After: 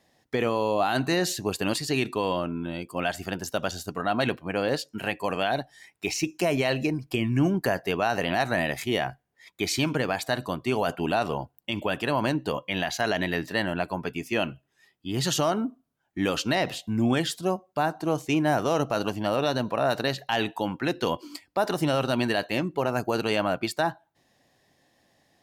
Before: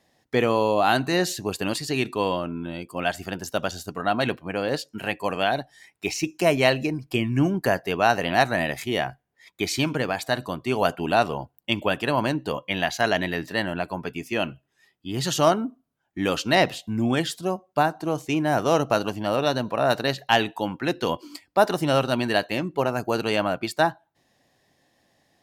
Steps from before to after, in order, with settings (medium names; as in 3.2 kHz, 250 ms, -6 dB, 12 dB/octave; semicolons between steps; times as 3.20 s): peak limiter -14 dBFS, peak gain reduction 8.5 dB